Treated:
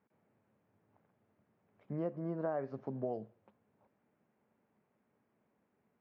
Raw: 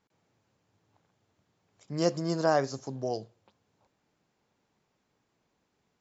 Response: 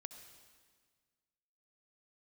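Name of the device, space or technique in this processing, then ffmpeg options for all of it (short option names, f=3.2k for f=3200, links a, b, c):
bass amplifier: -filter_complex "[0:a]asettb=1/sr,asplit=3[a][b][c];[a]atrim=end=1.924[d];[b]atrim=start=1.92:end=2.61,asetpts=PTS-STARTPTS,afade=t=in:d=0.004:c=qsin,afade=t=out:st=0.686:d=0.004:c=qsin,highshelf=f=2.5k:g=-10[e];[c]atrim=start=2.606[f];[d][e]acrossfade=d=0.004:c1=hsin:c2=qsin[g];[g][f]acrossfade=d=0.004:c1=qsin:c2=hsin,acompressor=threshold=-33dB:ratio=4,highpass=78,equalizer=f=220:t=q:w=4:g=8,equalizer=f=410:t=q:w=4:g=3,equalizer=f=600:t=q:w=4:g=4,lowpass=f=2.3k:w=0.5412,lowpass=f=2.3k:w=1.3066,volume=-3.5dB"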